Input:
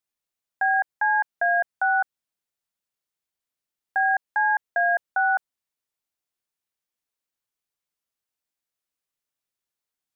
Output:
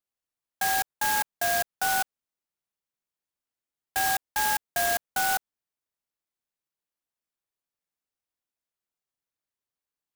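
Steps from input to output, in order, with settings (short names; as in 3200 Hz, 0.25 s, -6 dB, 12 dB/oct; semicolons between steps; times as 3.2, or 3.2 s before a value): clock jitter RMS 0.09 ms; gain -4 dB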